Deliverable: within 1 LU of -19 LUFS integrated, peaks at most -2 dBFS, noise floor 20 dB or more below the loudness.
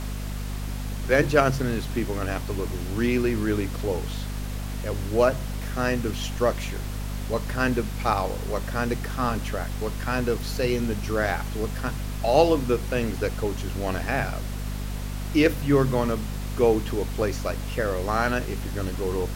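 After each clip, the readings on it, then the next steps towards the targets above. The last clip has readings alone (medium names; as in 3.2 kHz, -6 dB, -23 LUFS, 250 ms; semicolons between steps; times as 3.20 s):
hum 50 Hz; highest harmonic 250 Hz; hum level -28 dBFS; noise floor -31 dBFS; noise floor target -46 dBFS; loudness -26.0 LUFS; peak level -4.5 dBFS; loudness target -19.0 LUFS
-> de-hum 50 Hz, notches 5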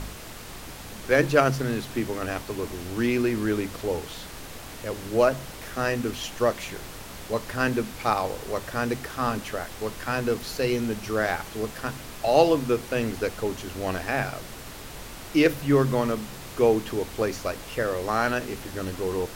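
hum not found; noise floor -41 dBFS; noise floor target -47 dBFS
-> noise print and reduce 6 dB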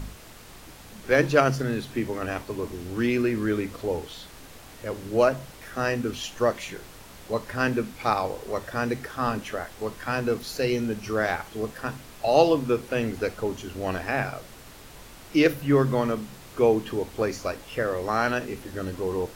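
noise floor -46 dBFS; noise floor target -47 dBFS
-> noise print and reduce 6 dB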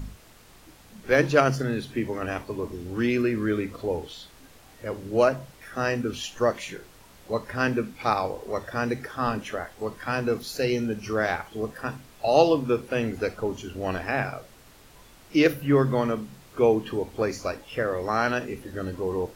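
noise floor -52 dBFS; loudness -26.5 LUFS; peak level -5.0 dBFS; loudness target -19.0 LUFS
-> trim +7.5 dB; peak limiter -2 dBFS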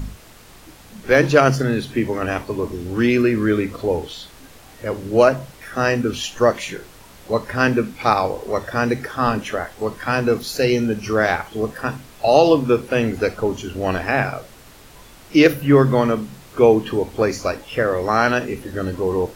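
loudness -19.5 LUFS; peak level -2.0 dBFS; noise floor -45 dBFS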